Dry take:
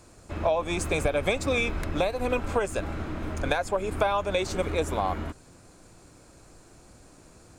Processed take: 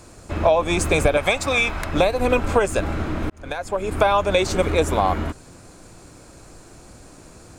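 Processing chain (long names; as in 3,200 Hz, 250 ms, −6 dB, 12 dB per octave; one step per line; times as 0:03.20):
0:01.17–0:01.93: low shelf with overshoot 570 Hz −6.5 dB, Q 1.5
0:03.30–0:04.12: fade in
level +8 dB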